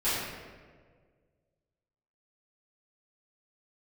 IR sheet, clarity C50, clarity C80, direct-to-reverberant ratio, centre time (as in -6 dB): -2.0 dB, 0.5 dB, -16.0 dB, 103 ms